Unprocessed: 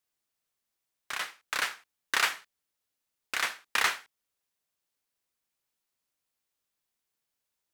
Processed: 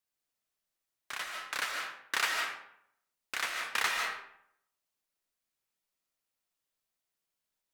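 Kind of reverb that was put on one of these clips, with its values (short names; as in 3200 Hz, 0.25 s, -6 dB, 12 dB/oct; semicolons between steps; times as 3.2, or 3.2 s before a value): digital reverb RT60 0.72 s, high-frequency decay 0.65×, pre-delay 0.105 s, DRR 1.5 dB; gain -4.5 dB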